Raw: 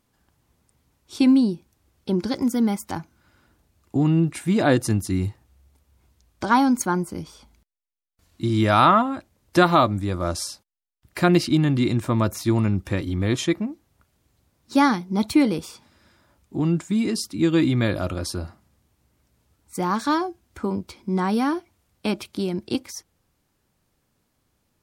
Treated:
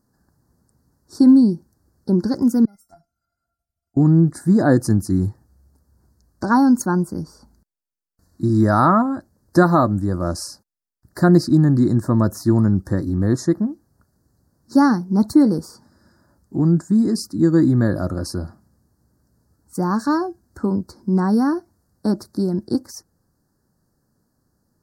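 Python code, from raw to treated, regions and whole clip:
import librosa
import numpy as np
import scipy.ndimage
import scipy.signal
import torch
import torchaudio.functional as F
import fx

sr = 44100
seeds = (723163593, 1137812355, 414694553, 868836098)

y = fx.chain(x, sr, fx.level_steps(step_db=9),
    fx.comb_fb(f0_hz=690.0, decay_s=0.15, harmonics='all', damping=0.0, mix_pct=100), at=(2.65, 3.97))
y = scipy.signal.sosfilt(scipy.signal.ellip(3, 1.0, 60, [1700.0, 4500.0], 'bandstop', fs=sr, output='sos'), y)
y = fx.peak_eq(y, sr, hz=190.0, db=6.5, octaves=2.0)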